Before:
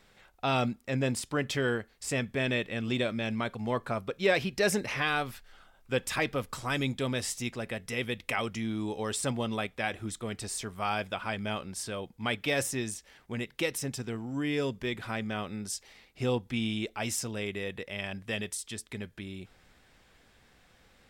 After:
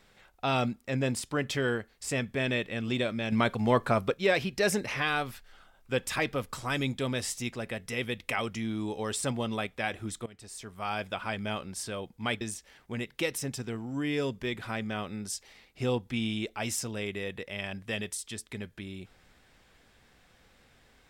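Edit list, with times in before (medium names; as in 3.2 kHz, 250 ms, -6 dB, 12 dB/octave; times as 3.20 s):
3.32–4.14 s: gain +6.5 dB
10.26–11.15 s: fade in, from -18.5 dB
12.41–12.81 s: delete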